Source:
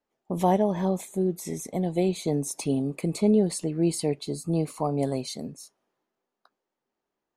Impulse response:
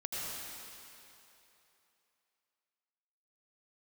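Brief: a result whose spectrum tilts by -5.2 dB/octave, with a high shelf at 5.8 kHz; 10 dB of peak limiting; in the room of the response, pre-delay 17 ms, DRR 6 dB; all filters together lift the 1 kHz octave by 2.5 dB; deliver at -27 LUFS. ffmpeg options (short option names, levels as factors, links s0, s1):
-filter_complex "[0:a]equalizer=f=1000:t=o:g=3.5,highshelf=f=5800:g=4.5,alimiter=limit=0.112:level=0:latency=1,asplit=2[s0][s1];[1:a]atrim=start_sample=2205,adelay=17[s2];[s1][s2]afir=irnorm=-1:irlink=0,volume=0.335[s3];[s0][s3]amix=inputs=2:normalize=0,volume=1.33"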